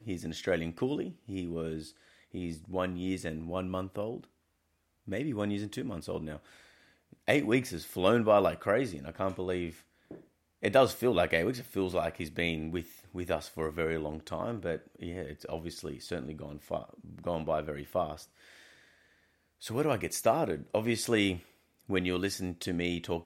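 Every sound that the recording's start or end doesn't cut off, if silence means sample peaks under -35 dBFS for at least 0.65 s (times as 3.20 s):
5.08–6.37 s
7.28–18.14 s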